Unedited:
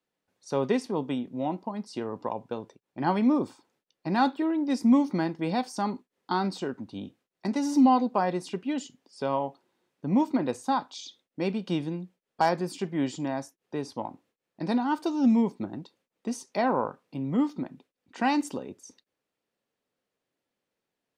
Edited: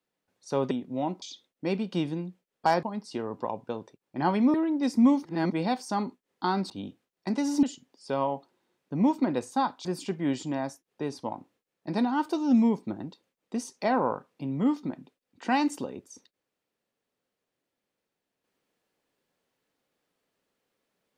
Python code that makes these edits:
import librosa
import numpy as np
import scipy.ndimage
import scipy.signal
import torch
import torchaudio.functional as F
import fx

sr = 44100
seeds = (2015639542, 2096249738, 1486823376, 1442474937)

y = fx.edit(x, sr, fx.cut(start_s=0.71, length_s=0.43),
    fx.cut(start_s=3.36, length_s=1.05),
    fx.reverse_span(start_s=5.12, length_s=0.27),
    fx.cut(start_s=6.57, length_s=0.31),
    fx.cut(start_s=7.81, length_s=0.94),
    fx.move(start_s=10.97, length_s=1.61, to_s=1.65), tone=tone)